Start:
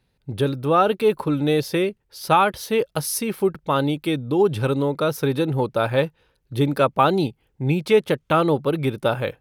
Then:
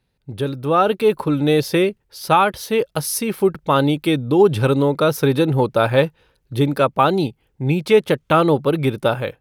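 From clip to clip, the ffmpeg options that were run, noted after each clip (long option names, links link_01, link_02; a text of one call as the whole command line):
ffmpeg -i in.wav -af "dynaudnorm=framelen=450:gausssize=3:maxgain=11.5dB,volume=-2dB" out.wav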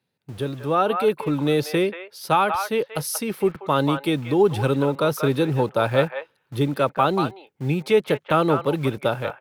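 ffmpeg -i in.wav -filter_complex "[0:a]acrossover=split=110|570|2900[link_01][link_02][link_03][link_04];[link_01]acrusher=bits=6:mix=0:aa=0.000001[link_05];[link_03]aecho=1:1:185:0.596[link_06];[link_05][link_02][link_06][link_04]amix=inputs=4:normalize=0,volume=-4.5dB" out.wav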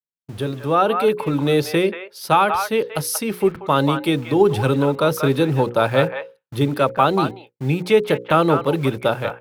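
ffmpeg -i in.wav -af "bandreject=frequency=60:width_type=h:width=6,bandreject=frequency=120:width_type=h:width=6,bandreject=frequency=180:width_type=h:width=6,bandreject=frequency=240:width_type=h:width=6,bandreject=frequency=300:width_type=h:width=6,bandreject=frequency=360:width_type=h:width=6,bandreject=frequency=420:width_type=h:width=6,bandreject=frequency=480:width_type=h:width=6,bandreject=frequency=540:width_type=h:width=6,agate=range=-33dB:threshold=-40dB:ratio=3:detection=peak,volume=3.5dB" out.wav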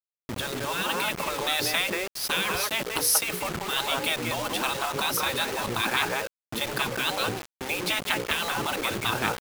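ffmpeg -i in.wav -af "afftfilt=real='re*lt(hypot(re,im),0.224)':imag='im*lt(hypot(re,im),0.224)':win_size=1024:overlap=0.75,acrusher=bits=5:mix=0:aa=0.000001,volume=3dB" out.wav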